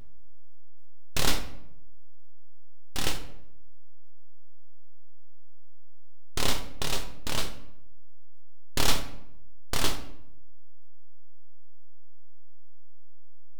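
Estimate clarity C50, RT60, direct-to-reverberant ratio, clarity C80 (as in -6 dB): 10.0 dB, 0.80 s, 5.5 dB, 13.0 dB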